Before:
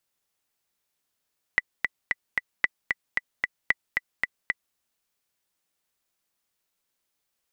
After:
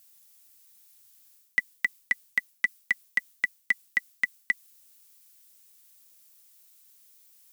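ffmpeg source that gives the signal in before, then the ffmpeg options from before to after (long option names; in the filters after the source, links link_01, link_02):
-f lavfi -i "aevalsrc='pow(10,(-6.5-4*gte(mod(t,4*60/226),60/226))/20)*sin(2*PI*1980*mod(t,60/226))*exp(-6.91*mod(t,60/226)/0.03)':duration=3.18:sample_rate=44100"
-af "equalizer=frequency=230:width=1.9:gain=10,areverse,acompressor=threshold=-30dB:ratio=12,areverse,crystalizer=i=8:c=0"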